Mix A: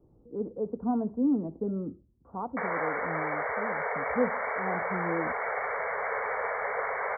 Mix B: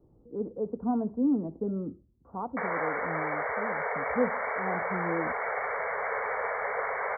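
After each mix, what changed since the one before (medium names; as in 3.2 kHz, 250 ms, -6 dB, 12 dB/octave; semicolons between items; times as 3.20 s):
no change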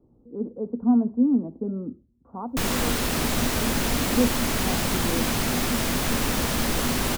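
background: remove brick-wall FIR band-pass 410–2300 Hz; master: add peaking EQ 240 Hz +11 dB 0.28 oct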